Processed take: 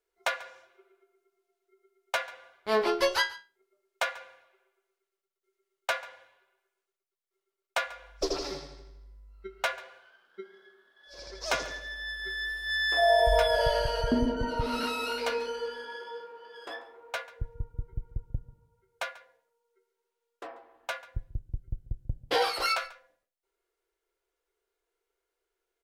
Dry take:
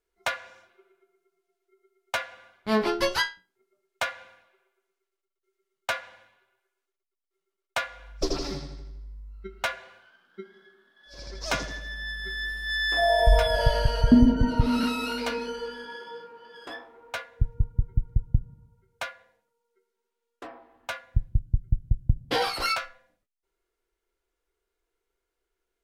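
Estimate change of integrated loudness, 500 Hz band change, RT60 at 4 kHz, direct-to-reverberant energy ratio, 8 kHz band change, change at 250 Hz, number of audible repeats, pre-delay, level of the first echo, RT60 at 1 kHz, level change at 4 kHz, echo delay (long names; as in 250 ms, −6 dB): −3.5 dB, +0.5 dB, no reverb audible, no reverb audible, −1.5 dB, −10.5 dB, 1, no reverb audible, −19.5 dB, no reverb audible, −1.5 dB, 140 ms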